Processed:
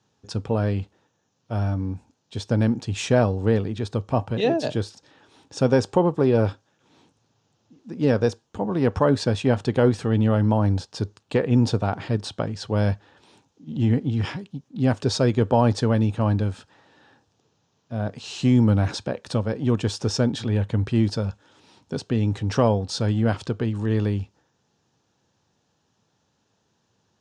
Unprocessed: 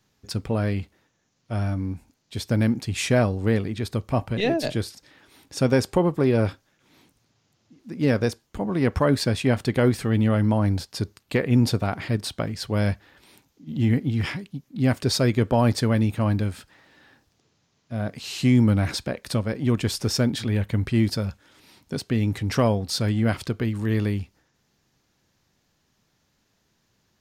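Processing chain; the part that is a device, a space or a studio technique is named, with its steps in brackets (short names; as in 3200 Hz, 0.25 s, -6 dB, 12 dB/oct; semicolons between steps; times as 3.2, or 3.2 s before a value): car door speaker (speaker cabinet 89–7400 Hz, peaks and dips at 99 Hz +4 dB, 470 Hz +4 dB, 860 Hz +5 dB, 2100 Hz -9 dB, 4600 Hz -4 dB)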